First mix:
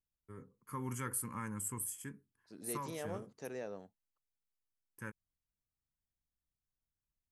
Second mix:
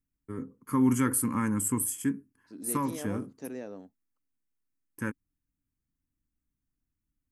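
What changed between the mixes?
first voice +9.5 dB; master: add bell 270 Hz +13 dB 0.56 oct

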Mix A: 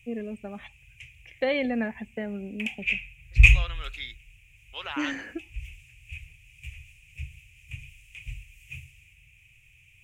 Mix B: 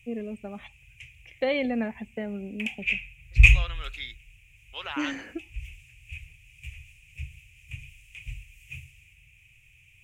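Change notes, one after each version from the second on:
first voice: add bell 1700 Hz -5.5 dB 0.28 oct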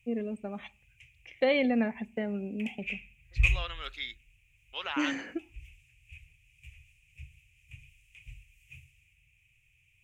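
first voice: send +7.0 dB; background -10.0 dB

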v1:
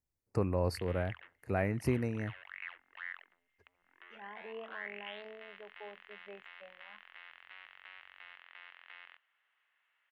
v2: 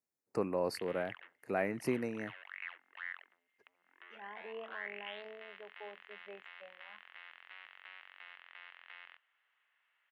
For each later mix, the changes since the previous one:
first voice: add bell 81 Hz -12.5 dB 0.46 oct; master: add HPF 220 Hz 12 dB/oct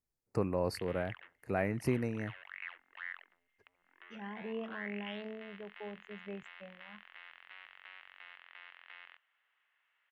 second voice: remove BPF 500–2700 Hz; master: remove HPF 220 Hz 12 dB/oct

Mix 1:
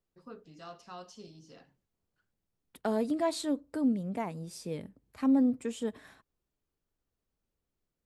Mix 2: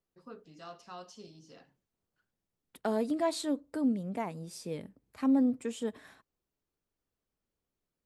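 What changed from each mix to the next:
master: add low shelf 110 Hz -6.5 dB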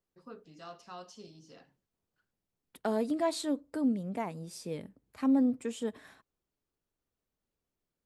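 none

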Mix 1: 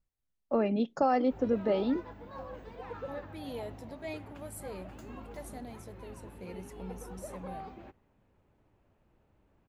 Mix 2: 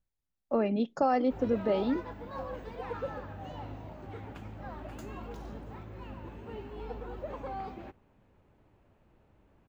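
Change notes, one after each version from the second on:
second voice: muted; background +4.5 dB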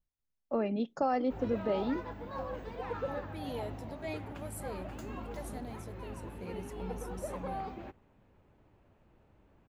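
first voice -3.5 dB; second voice: unmuted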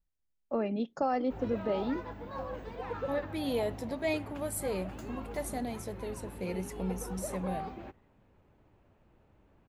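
second voice +9.0 dB

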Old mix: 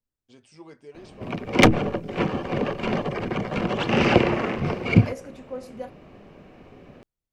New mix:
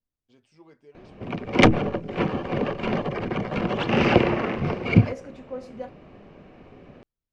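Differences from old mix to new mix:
first voice -6.5 dB; master: add air absorption 81 m

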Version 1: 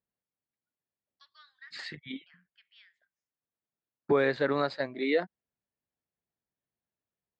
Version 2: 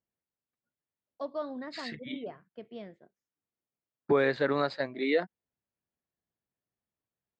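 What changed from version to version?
first voice: remove elliptic high-pass 1600 Hz, stop band 80 dB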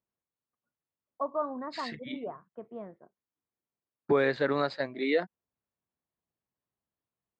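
first voice: add synth low-pass 1100 Hz, resonance Q 3.5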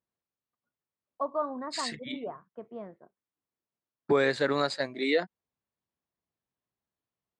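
master: remove air absorption 210 m

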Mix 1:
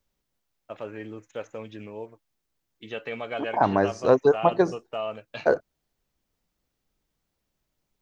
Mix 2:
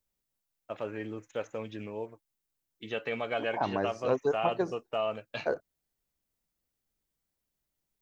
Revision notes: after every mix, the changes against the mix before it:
second voice -9.5 dB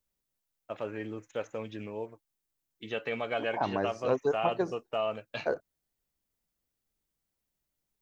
none

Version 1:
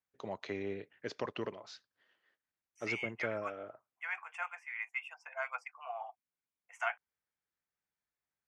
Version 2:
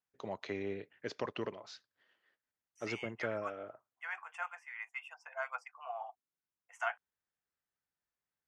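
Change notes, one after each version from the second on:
second voice: add bell 2300 Hz -8 dB 0.34 oct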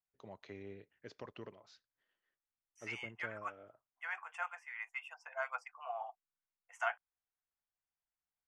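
first voice -11.5 dB; master: remove HPF 180 Hz 6 dB/oct

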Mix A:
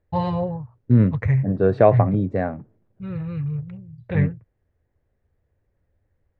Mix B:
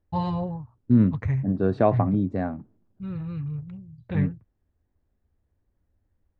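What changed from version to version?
master: add graphic EQ 125/250/500/2000 Hz -7/+4/-9/-8 dB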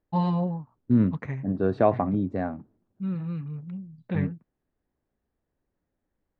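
first voice: add resonant low shelf 130 Hz -12 dB, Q 3; master: add tone controls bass -4 dB, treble -3 dB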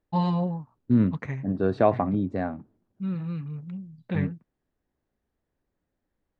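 master: add high shelf 3000 Hz +7 dB

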